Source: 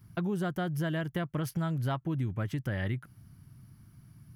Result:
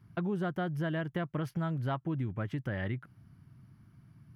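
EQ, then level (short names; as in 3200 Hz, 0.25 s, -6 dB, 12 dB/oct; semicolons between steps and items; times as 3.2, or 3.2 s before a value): tone controls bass 0 dB, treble -5 dB; low shelf 88 Hz -8.5 dB; high shelf 5400 Hz -11.5 dB; 0.0 dB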